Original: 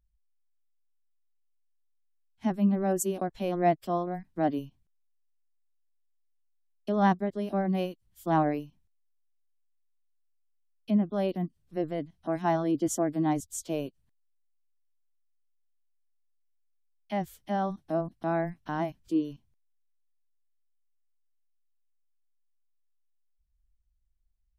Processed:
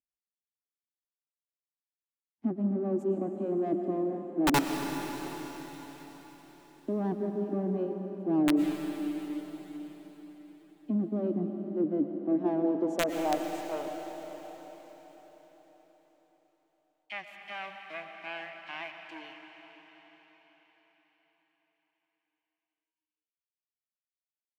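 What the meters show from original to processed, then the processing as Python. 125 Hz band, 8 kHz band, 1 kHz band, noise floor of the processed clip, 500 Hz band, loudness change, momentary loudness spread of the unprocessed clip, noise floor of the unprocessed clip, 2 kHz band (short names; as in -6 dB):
-5.5 dB, -5.0 dB, -5.5 dB, under -85 dBFS, -1.5 dB, -2.0 dB, 9 LU, -71 dBFS, +2.0 dB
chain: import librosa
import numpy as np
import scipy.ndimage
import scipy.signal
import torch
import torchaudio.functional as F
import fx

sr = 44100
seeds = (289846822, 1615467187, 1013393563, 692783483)

y = fx.low_shelf(x, sr, hz=140.0, db=-7.5)
y = fx.leveller(y, sr, passes=3)
y = fx.filter_sweep_bandpass(y, sr, from_hz=290.0, to_hz=2400.0, start_s=12.18, end_s=15.15, q=3.7)
y = (np.mod(10.0 ** (19.5 / 20.0) * y + 1.0, 2.0) - 1.0) / 10.0 ** (19.5 / 20.0)
y = fx.rev_freeverb(y, sr, rt60_s=4.9, hf_ratio=1.0, predelay_ms=75, drr_db=4.5)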